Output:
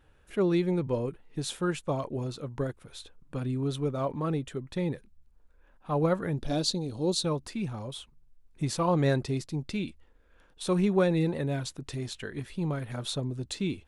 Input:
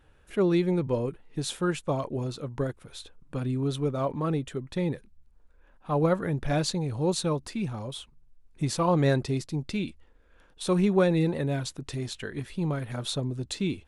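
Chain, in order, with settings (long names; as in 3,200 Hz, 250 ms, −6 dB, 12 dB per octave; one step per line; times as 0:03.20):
0:06.38–0:07.25: octave-band graphic EQ 125/250/1,000/2,000/4,000 Hz −7/+5/−4/−11/+8 dB
level −2 dB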